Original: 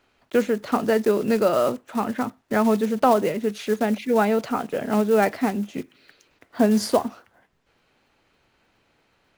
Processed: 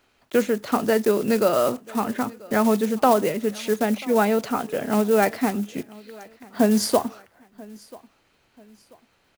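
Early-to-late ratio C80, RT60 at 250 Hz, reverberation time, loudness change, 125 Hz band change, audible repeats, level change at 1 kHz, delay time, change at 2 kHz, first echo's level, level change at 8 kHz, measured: none, none, none, +0.5 dB, 0.0 dB, 2, 0.0 dB, 0.987 s, +0.5 dB, -23.0 dB, +5.0 dB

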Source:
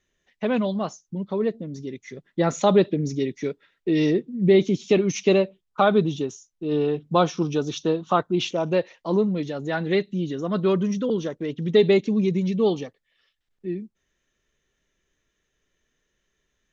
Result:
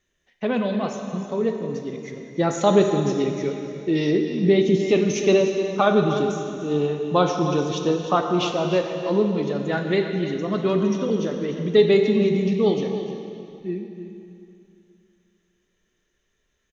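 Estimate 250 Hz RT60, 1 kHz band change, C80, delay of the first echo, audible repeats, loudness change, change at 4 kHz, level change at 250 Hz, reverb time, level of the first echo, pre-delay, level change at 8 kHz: 2.6 s, +1.5 dB, 5.0 dB, 0.302 s, 1, +1.5 dB, +1.5 dB, +1.0 dB, 2.7 s, -12.0 dB, 7 ms, n/a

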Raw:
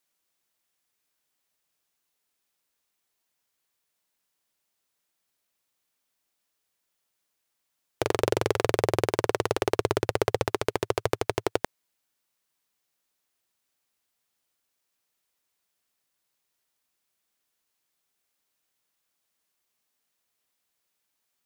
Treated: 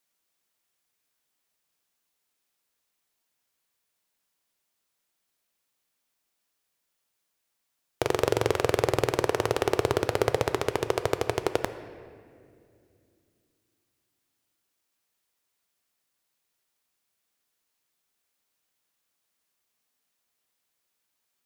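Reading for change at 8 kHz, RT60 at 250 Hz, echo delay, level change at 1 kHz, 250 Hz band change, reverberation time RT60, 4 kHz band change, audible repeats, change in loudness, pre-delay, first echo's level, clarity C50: 0.0 dB, 3.5 s, none, +0.5 dB, 0.0 dB, 2.4 s, +0.5 dB, none, +0.5 dB, 4 ms, none, 11.5 dB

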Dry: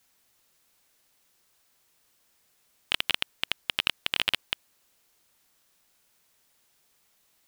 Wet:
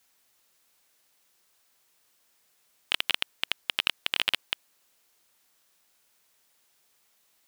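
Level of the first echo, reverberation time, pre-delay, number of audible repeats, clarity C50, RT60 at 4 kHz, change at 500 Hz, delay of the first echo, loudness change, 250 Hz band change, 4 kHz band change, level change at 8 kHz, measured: none, none, none, none, none, none, -1.0 dB, none, 0.0 dB, -3.0 dB, 0.0 dB, 0.0 dB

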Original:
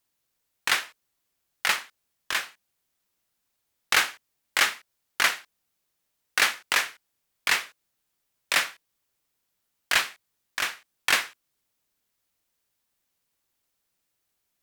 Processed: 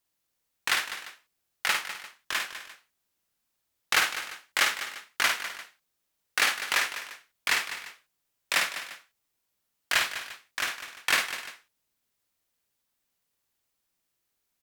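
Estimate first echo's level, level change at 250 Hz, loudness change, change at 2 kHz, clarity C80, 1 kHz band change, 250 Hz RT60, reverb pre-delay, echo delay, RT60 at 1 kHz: -5.0 dB, -1.5 dB, -2.5 dB, -1.5 dB, none, -1.5 dB, none, none, 53 ms, none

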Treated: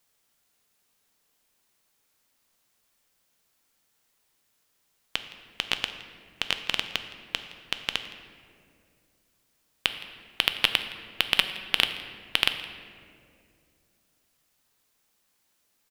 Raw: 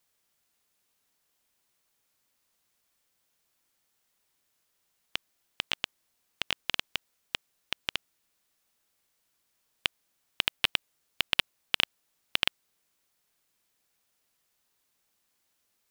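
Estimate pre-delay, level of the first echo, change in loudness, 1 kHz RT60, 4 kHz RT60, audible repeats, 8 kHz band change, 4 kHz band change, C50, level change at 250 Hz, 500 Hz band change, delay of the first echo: 4 ms, -21.0 dB, +3.5 dB, 1.9 s, 1.2 s, 1, +4.0 dB, +4.0 dB, 9.5 dB, +5.0 dB, +4.5 dB, 0.166 s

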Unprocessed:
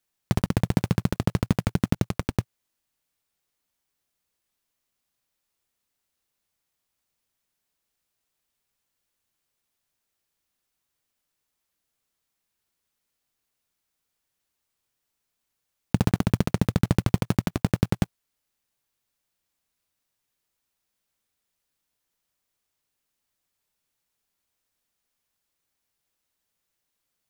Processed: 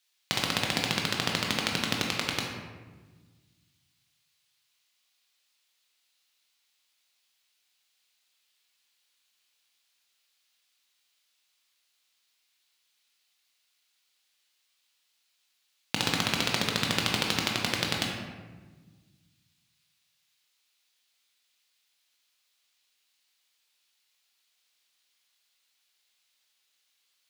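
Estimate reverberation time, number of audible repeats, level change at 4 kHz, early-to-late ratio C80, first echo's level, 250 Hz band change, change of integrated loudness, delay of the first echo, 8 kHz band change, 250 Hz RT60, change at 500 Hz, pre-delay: 1.3 s, none, +13.0 dB, 4.0 dB, none, -9.5 dB, -2.5 dB, none, +7.0 dB, 2.0 s, -4.0 dB, 18 ms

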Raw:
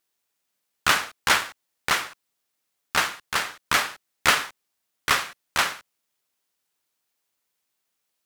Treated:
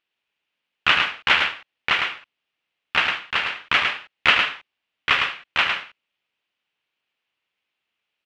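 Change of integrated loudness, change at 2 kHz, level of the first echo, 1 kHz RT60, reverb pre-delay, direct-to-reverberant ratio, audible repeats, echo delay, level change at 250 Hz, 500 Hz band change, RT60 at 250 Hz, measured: +3.0 dB, +4.5 dB, -5.0 dB, none, none, none, 1, 0.107 s, -0.5 dB, -0.5 dB, none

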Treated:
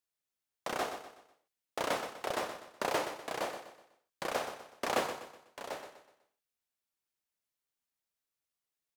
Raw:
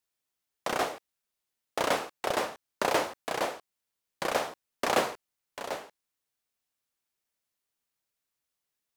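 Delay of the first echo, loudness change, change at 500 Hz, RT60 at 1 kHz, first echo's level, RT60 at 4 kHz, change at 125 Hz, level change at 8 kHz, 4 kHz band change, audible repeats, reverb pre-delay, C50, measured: 0.124 s, -6.0 dB, -5.5 dB, none, -10.0 dB, none, -5.5 dB, -5.5 dB, -5.5 dB, 4, none, none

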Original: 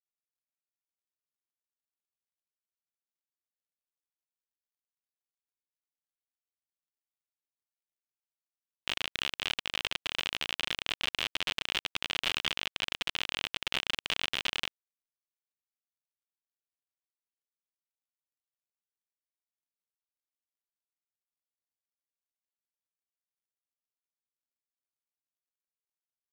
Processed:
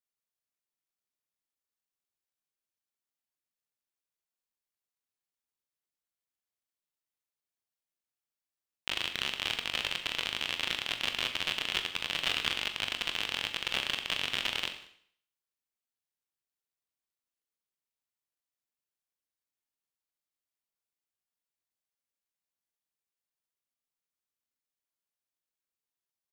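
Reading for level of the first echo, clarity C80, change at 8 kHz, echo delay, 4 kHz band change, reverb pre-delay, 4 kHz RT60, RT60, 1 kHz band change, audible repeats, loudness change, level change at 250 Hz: -23.5 dB, 11.5 dB, +1.0 dB, 0.189 s, +1.0 dB, 22 ms, 0.60 s, 0.60 s, +1.0 dB, 1, +1.0 dB, +1.0 dB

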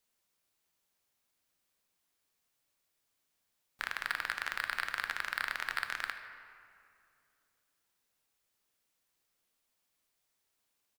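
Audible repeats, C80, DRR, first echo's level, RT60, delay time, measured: 1, 9.0 dB, 6.5 dB, -17.5 dB, 2.6 s, 77 ms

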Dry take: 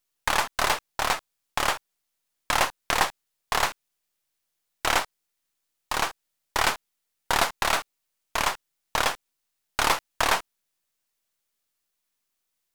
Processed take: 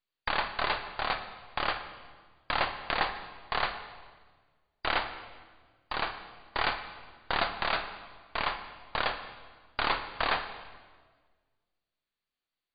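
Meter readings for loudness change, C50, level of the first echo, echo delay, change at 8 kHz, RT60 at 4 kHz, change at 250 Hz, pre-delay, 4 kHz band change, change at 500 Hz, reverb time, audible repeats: -6.0 dB, 9.0 dB, none, none, under -40 dB, 1.3 s, -4.5 dB, 27 ms, -5.5 dB, -5.0 dB, 1.5 s, none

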